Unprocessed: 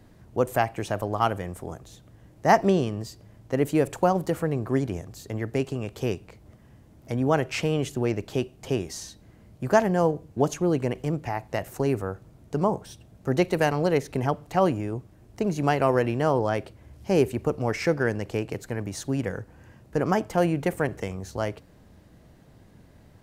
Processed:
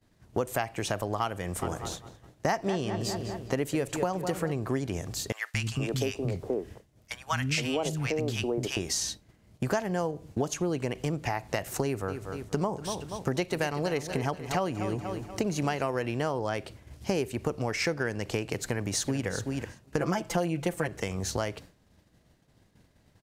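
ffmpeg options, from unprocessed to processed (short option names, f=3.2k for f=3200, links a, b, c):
-filter_complex "[0:a]asplit=3[a][b][c];[a]afade=t=out:st=1.61:d=0.02[d];[b]asplit=2[e][f];[f]adelay=203,lowpass=f=3.3k:p=1,volume=-11.5dB,asplit=2[g][h];[h]adelay=203,lowpass=f=3.3k:p=1,volume=0.48,asplit=2[i][j];[j]adelay=203,lowpass=f=3.3k:p=1,volume=0.48,asplit=2[k][l];[l]adelay=203,lowpass=f=3.3k:p=1,volume=0.48,asplit=2[m][n];[n]adelay=203,lowpass=f=3.3k:p=1,volume=0.48[o];[e][g][i][k][m][o]amix=inputs=6:normalize=0,afade=t=in:st=1.61:d=0.02,afade=t=out:st=4.51:d=0.02[p];[c]afade=t=in:st=4.51:d=0.02[q];[d][p][q]amix=inputs=3:normalize=0,asettb=1/sr,asplit=3[r][s][t];[r]atrim=end=5.324[u];[s]atrim=start=5.32:end=8.77,asetpts=PTS-STARTPTS,afade=t=in:d=0.004:c=qsin,afade=t=out:st=3.446:d=0.004:c=qsin,acrossover=split=230|1000[v][w][x];[v]adelay=220[y];[w]adelay=470[z];[y][z][x]amix=inputs=3:normalize=0,atrim=end_sample=152145[aa];[t]atrim=start=8.766[ab];[u][aa]acrossfade=d=0.004:c1=hsin:c2=qsin[ac];[ac][ab]acrossfade=d=0.004:c1=qsin:c2=hsin,asettb=1/sr,asplit=3[ad][ae][af];[ad]atrim=end=11.844[ag];[ae]atrim=start=11.84:end=15.86,asetpts=PTS-STARTPTS,afade=t=in:d=0.004:c=qsin,afade=t=out:st=4.016:d=0.004:c=qsin,aecho=1:1:239|478|717|956:0.211|0.0909|0.0391|0.0168,atrim=end_sample=177282[ah];[af]atrim=start=15.856[ai];[ag][ah]acrossfade=d=0.004:c1=hsin:c2=qsin[aj];[aj][ai]acrossfade=d=0.004:c1=qsin:c2=hsin,asplit=2[ak][al];[al]afade=t=in:st=18.55:d=0.01,afade=t=out:st=19.26:d=0.01,aecho=0:1:380|760:0.334965|0.0334965[am];[ak][am]amix=inputs=2:normalize=0,asettb=1/sr,asplit=3[an][ao][ap];[an]atrim=end=20.004[aq];[ao]atrim=start=20:end=20.88,asetpts=PTS-STARTPTS,afade=t=in:d=0.004:c=qsin,afade=t=out:st=0.876:d=0.004:c=qsin,aecho=1:1:5.9:0.94,atrim=end_sample=38808[ar];[ap]atrim=start=20.876[as];[aq][ar]acrossfade=d=0.004:c1=hsin:c2=qsin[at];[at][as]acrossfade=d=0.004:c1=qsin:c2=hsin,agate=range=-33dB:threshold=-41dB:ratio=3:detection=peak,equalizer=f=5.3k:w=0.34:g=7.5,acompressor=threshold=-32dB:ratio=6,volume=5.5dB"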